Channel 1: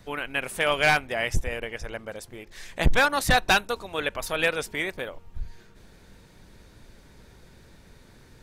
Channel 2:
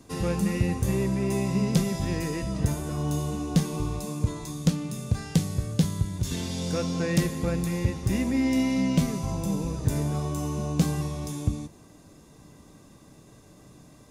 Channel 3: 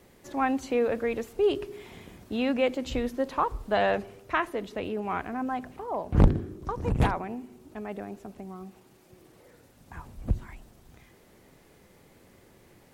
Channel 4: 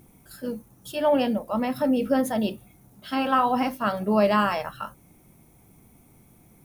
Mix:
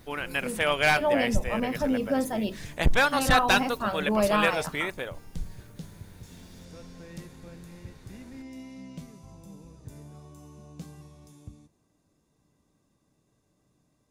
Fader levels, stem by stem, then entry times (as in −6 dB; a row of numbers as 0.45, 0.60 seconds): −1.5 dB, −19.0 dB, muted, −4.0 dB; 0.00 s, 0.00 s, muted, 0.00 s